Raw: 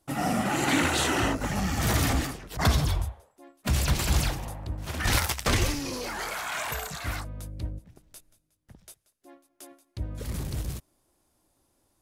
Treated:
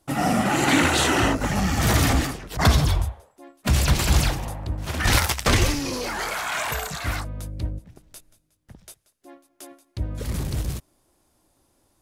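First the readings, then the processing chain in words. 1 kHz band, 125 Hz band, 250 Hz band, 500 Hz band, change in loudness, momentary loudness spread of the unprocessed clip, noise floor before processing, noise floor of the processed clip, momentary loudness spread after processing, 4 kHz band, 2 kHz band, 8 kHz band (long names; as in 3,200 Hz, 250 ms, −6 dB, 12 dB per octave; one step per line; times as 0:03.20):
+5.5 dB, +5.5 dB, +5.5 dB, +5.5 dB, +5.5 dB, 13 LU, −72 dBFS, −67 dBFS, 13 LU, +5.0 dB, +5.5 dB, +4.5 dB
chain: high-shelf EQ 11,000 Hz −3.5 dB
level +5.5 dB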